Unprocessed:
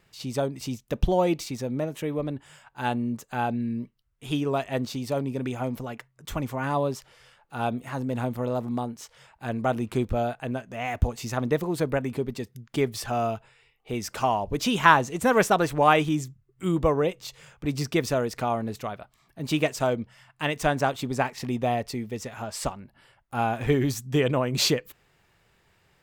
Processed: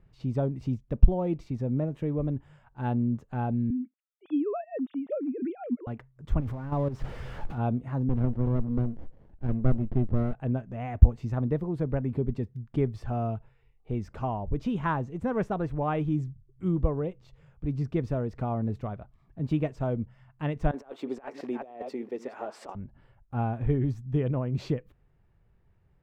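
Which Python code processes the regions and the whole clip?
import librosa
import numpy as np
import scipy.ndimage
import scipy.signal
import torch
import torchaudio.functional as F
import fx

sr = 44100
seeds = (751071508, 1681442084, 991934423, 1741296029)

y = fx.chain(x, sr, fx.sine_speech(),
    fx.highpass(hz=200.0, slope=12), at=(3.7, 5.87))
y = fx.chain(y, sr, fx.zero_step(step_db=-30.0),
    fx.level_steps(step_db=12), at=(6.4, 7.58))
y = fx.chain(y, sr, fx.highpass(hz=150.0, slope=12),
    fx.running_max(window=33), at=(8.09, 10.33))
y = fx.chain(y, sr, fx.reverse_delay(ms=350, wet_db=-13.0),
    fx.highpass(hz=330.0, slope=24),
    fx.over_compress(threshold_db=-32.0, ratio=-0.5), at=(20.71, 22.75))
y = fx.high_shelf(y, sr, hz=2300.0, db=-9.5)
y = fx.rider(y, sr, range_db=3, speed_s=0.5)
y = fx.riaa(y, sr, side='playback')
y = y * librosa.db_to_amplitude(-8.0)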